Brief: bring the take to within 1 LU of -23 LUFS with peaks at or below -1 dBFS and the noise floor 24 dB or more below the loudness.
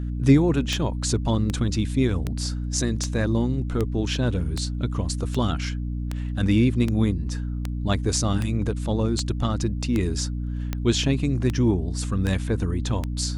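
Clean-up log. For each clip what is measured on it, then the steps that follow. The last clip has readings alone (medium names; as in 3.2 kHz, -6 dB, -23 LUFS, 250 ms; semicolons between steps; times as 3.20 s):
clicks found 17; hum 60 Hz; highest harmonic 300 Hz; hum level -26 dBFS; loudness -24.5 LUFS; peak level -6.0 dBFS; loudness target -23.0 LUFS
-> de-click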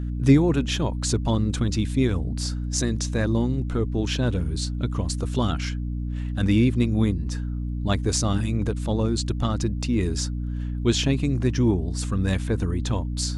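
clicks found 0; hum 60 Hz; highest harmonic 300 Hz; hum level -26 dBFS
-> hum notches 60/120/180/240/300 Hz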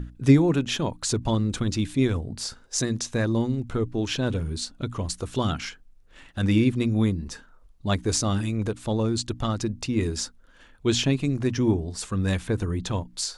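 hum not found; loudness -26.0 LUFS; peak level -6.5 dBFS; loudness target -23.0 LUFS
-> trim +3 dB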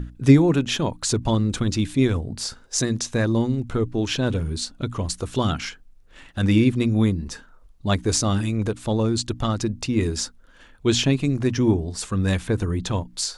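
loudness -23.0 LUFS; peak level -3.5 dBFS; noise floor -51 dBFS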